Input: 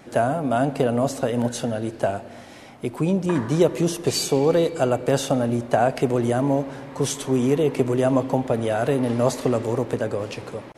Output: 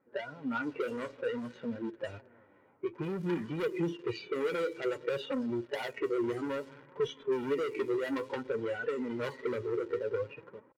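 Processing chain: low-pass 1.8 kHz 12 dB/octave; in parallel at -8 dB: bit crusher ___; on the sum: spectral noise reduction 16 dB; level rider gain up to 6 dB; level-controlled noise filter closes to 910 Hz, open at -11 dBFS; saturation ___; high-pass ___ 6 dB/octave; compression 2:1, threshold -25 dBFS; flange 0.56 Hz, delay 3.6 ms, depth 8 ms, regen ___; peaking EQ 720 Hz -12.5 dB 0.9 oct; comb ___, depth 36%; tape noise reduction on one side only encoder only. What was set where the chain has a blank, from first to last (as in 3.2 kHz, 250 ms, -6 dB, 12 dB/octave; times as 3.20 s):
5-bit, -17.5 dBFS, 290 Hz, +39%, 2.1 ms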